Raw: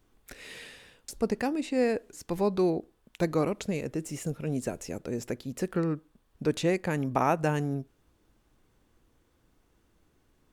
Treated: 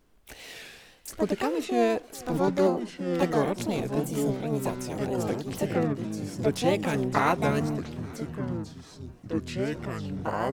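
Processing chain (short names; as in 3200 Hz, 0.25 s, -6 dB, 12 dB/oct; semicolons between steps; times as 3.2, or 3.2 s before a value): feedback echo 0.407 s, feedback 59%, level -23 dB; wow and flutter 120 cents; echoes that change speed 0.709 s, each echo -5 st, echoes 3, each echo -6 dB; harmoniser +7 st -3 dB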